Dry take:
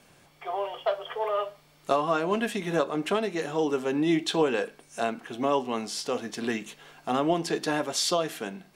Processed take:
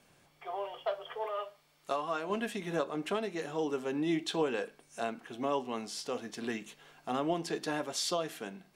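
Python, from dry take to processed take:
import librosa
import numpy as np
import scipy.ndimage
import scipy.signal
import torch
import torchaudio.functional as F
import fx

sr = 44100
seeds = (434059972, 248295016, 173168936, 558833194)

y = fx.low_shelf(x, sr, hz=410.0, db=-8.0, at=(1.26, 2.3))
y = y * 10.0 ** (-7.0 / 20.0)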